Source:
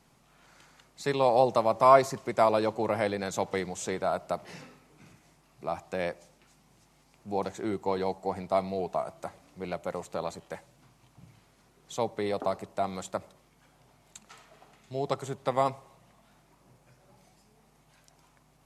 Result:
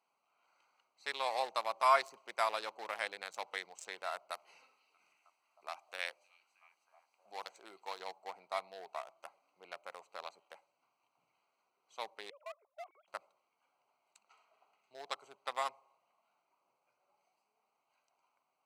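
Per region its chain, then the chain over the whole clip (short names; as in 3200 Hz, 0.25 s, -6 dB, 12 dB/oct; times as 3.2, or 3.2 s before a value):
4.31–8 tilt +2 dB/oct + delay with a stepping band-pass 0.314 s, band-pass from 3600 Hz, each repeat -0.7 oct, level -10.5 dB
12.3–13.08 sine-wave speech + level quantiser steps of 10 dB
whole clip: Wiener smoothing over 25 samples; HPF 1500 Hz 12 dB/oct; gain +1 dB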